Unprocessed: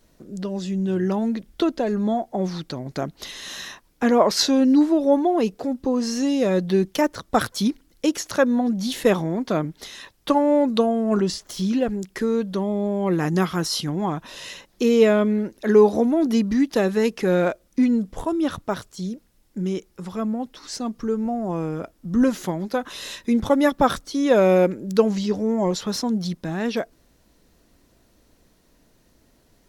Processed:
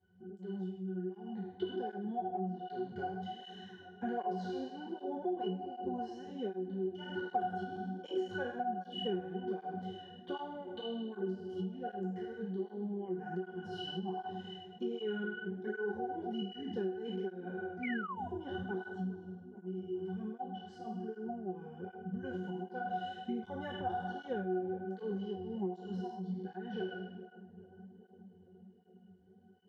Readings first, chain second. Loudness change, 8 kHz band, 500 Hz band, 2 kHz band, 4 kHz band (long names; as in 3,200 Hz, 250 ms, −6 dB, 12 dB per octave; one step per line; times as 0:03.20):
−18.0 dB, below −35 dB, −18.0 dB, −13.0 dB, −16.5 dB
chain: peak hold with a decay on every bin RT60 1.03 s
resonances in every octave F#, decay 0.4 s
downward compressor 8 to 1, threshold −38 dBFS, peak gain reduction 18 dB
dynamic equaliser 180 Hz, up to −6 dB, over −54 dBFS, Q 2.5
high-pass filter 110 Hz
on a send: feedback echo with a low-pass in the loop 416 ms, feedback 81%, low-pass 1,100 Hz, level −15.5 dB
on the sum: sound drawn into the spectrogram fall, 0:17.83–0:18.28, 680–2,400 Hz −47 dBFS
parametric band 2,500 Hz +4 dB 0.24 octaves
through-zero flanger with one copy inverted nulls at 1.3 Hz, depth 5 ms
level +8.5 dB